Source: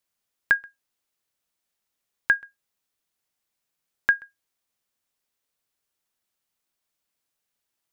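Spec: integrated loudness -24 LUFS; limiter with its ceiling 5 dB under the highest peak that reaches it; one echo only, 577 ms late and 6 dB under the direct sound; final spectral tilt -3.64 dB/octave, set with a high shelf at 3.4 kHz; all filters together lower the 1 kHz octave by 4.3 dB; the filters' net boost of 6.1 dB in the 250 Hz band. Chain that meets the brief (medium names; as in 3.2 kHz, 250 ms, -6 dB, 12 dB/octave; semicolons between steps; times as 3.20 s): peaking EQ 250 Hz +8.5 dB; peaking EQ 1 kHz -8 dB; treble shelf 3.4 kHz +7 dB; peak limiter -13.5 dBFS; delay 577 ms -6 dB; trim +8.5 dB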